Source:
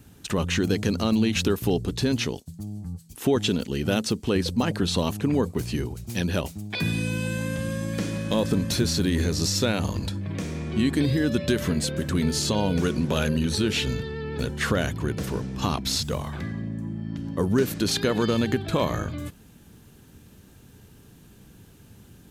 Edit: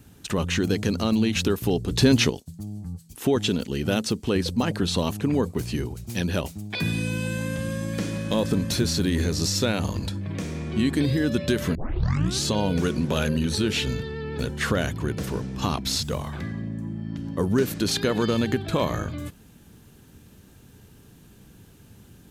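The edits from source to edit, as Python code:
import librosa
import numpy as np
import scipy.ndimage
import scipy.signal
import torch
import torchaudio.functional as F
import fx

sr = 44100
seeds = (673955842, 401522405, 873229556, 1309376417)

y = fx.edit(x, sr, fx.clip_gain(start_s=1.91, length_s=0.39, db=6.5),
    fx.tape_start(start_s=11.75, length_s=0.69), tone=tone)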